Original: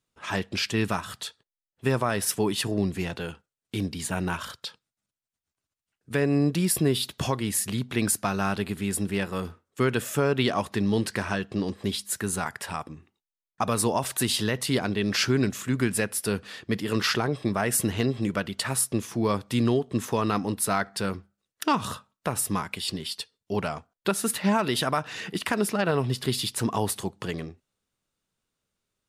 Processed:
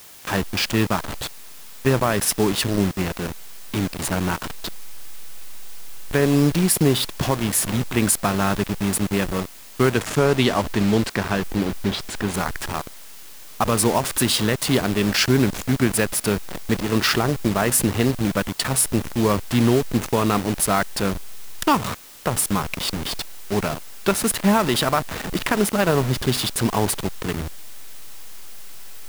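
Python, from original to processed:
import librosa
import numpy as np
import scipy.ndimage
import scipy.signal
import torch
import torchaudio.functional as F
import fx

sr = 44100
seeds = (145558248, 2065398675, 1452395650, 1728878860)

y = fx.delta_hold(x, sr, step_db=-28.0)
y = fx.lowpass(y, sr, hz=fx.line((9.89, 11000.0), (12.33, 4400.0)), slope=12, at=(9.89, 12.33), fade=0.02)
y = fx.dmg_noise_colour(y, sr, seeds[0], colour='white', level_db=-50.0)
y = F.gain(torch.from_numpy(y), 6.0).numpy()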